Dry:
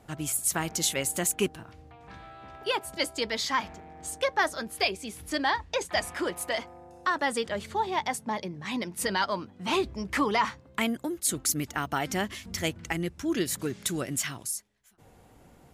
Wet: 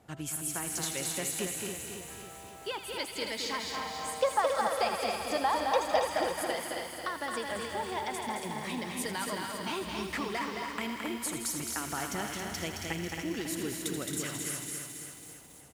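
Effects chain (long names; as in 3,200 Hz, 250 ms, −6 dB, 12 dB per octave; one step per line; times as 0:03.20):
high-pass filter 60 Hz
on a send: delay with a high-pass on its return 80 ms, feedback 75%, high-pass 1,700 Hz, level −9.5 dB
on the sum: downward compressor, threshold −28 dBFS, peak gain reduction 8.5 dB
gain on a spectral selection 0:03.74–0:06.04, 470–1,400 Hz +10 dB
repeating echo 274 ms, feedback 57%, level −6 dB
feedback echo at a low word length 218 ms, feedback 35%, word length 8 bits, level −4 dB
level −4.5 dB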